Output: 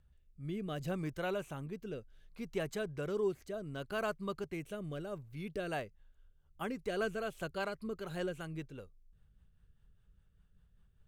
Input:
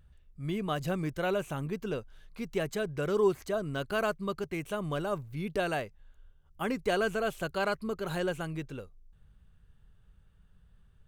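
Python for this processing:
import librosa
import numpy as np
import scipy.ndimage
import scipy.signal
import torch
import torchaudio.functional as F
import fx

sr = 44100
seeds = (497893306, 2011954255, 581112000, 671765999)

y = fx.rotary_switch(x, sr, hz=0.65, then_hz=5.0, switch_at_s=5.1)
y = y * 10.0 ** (-5.0 / 20.0)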